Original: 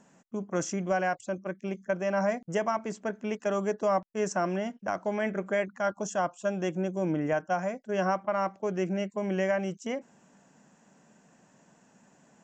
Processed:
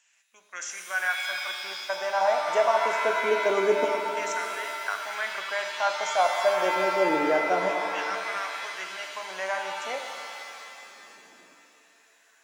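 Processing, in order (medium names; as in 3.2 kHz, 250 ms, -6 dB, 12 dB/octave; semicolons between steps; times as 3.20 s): LFO high-pass saw down 0.26 Hz 310–2600 Hz; pitch-shifted reverb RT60 2.5 s, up +7 st, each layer -2 dB, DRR 4 dB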